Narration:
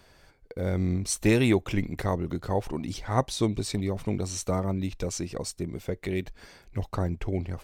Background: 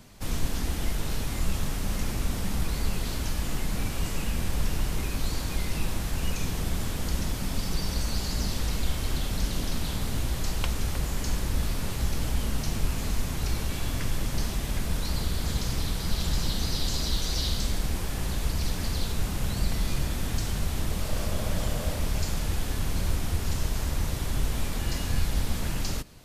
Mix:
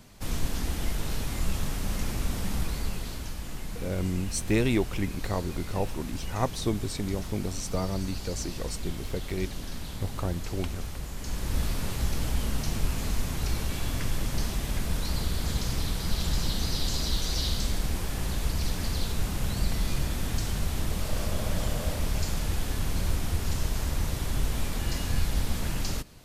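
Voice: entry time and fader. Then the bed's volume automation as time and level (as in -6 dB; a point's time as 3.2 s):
3.25 s, -3.0 dB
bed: 2.57 s -1 dB
3.39 s -7.5 dB
11.16 s -7.5 dB
11.56 s -0.5 dB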